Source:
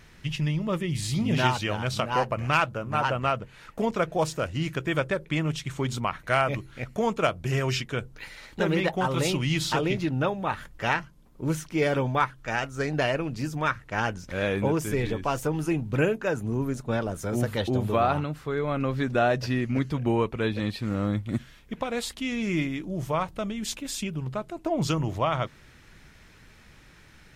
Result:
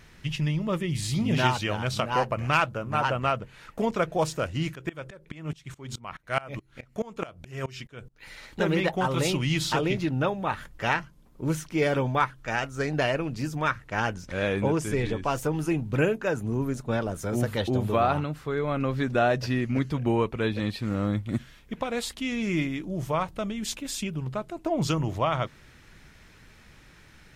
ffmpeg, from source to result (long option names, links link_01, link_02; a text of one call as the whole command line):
ffmpeg -i in.wav -filter_complex "[0:a]asplit=3[link_01][link_02][link_03];[link_01]afade=type=out:start_time=4.74:duration=0.02[link_04];[link_02]aeval=exprs='val(0)*pow(10,-25*if(lt(mod(-4.7*n/s,1),2*abs(-4.7)/1000),1-mod(-4.7*n/s,1)/(2*abs(-4.7)/1000),(mod(-4.7*n/s,1)-2*abs(-4.7)/1000)/(1-2*abs(-4.7)/1000))/20)':channel_layout=same,afade=type=in:start_time=4.74:duration=0.02,afade=type=out:start_time=8.28:duration=0.02[link_05];[link_03]afade=type=in:start_time=8.28:duration=0.02[link_06];[link_04][link_05][link_06]amix=inputs=3:normalize=0,asettb=1/sr,asplit=3[link_07][link_08][link_09];[link_07]atrim=end=14.264[link_10];[link_08]atrim=start=14.26:end=15.3,asetpts=PTS-STARTPTS,afade=type=in:duration=0.004:curve=qsin,afade=type=out:start_time=1.036:duration=0.004:curve=qsin,lowpass=frequency=11000:width=0.5412,lowpass=frequency=11000:width=1.3066[link_11];[link_09]atrim=start=15.296[link_12];[link_10][link_11]acrossfade=duration=0.004:curve1=hsin:curve2=qsin[link_13];[link_13][link_12]acrossfade=duration=0.004:curve1=qsin:curve2=hsin" out.wav